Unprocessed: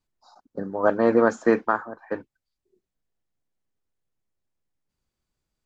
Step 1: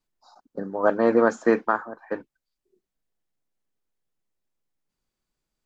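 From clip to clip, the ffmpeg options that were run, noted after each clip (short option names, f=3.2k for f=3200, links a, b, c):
-af "equalizer=f=80:t=o:w=0.93:g=-11"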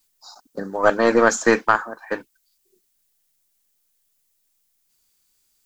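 -af "crystalizer=i=9:c=0,aeval=exprs='0.794*(cos(1*acos(clip(val(0)/0.794,-1,1)))-cos(1*PI/2))+0.0398*(cos(4*acos(clip(val(0)/0.794,-1,1)))-cos(4*PI/2))':c=same,volume=1dB"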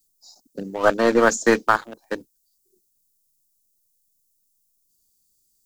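-filter_complex "[0:a]acrossover=split=110|520|4300[a][b][c][d];[a]acrusher=bits=3:mode=log:mix=0:aa=0.000001[e];[c]aeval=exprs='sgn(val(0))*max(abs(val(0))-0.0282,0)':c=same[f];[e][b][f][d]amix=inputs=4:normalize=0"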